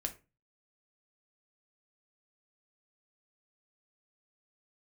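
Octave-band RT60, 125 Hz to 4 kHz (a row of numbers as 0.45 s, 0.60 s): 0.50 s, 0.40 s, 0.30 s, 0.25 s, 0.25 s, 0.20 s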